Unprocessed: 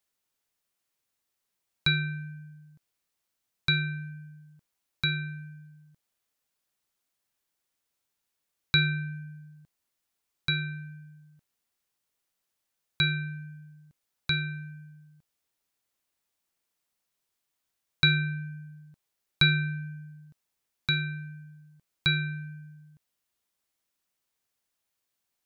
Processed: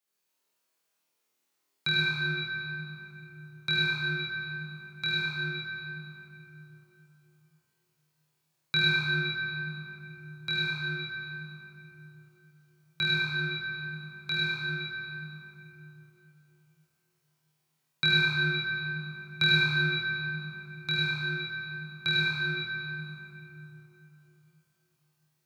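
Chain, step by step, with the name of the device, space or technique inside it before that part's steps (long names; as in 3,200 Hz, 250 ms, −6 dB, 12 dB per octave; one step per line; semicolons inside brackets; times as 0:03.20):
high-pass filter 190 Hz 12 dB per octave
tunnel (flutter between parallel walls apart 4.3 metres, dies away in 0.81 s; convolution reverb RT60 3.7 s, pre-delay 62 ms, DRR −5.5 dB)
level −5.5 dB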